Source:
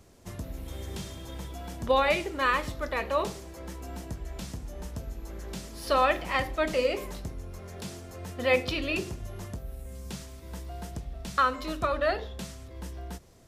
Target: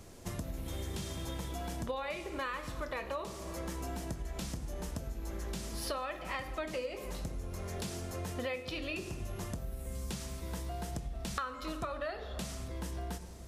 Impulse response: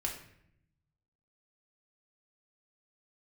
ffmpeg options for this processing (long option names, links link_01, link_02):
-filter_complex "[0:a]asplit=2[link_01][link_02];[1:a]atrim=start_sample=2205,asetrate=23373,aresample=44100,highshelf=frequency=6300:gain=8.5[link_03];[link_02][link_03]afir=irnorm=-1:irlink=0,volume=-14.5dB[link_04];[link_01][link_04]amix=inputs=2:normalize=0,acompressor=threshold=-37dB:ratio=10,volume=2dB"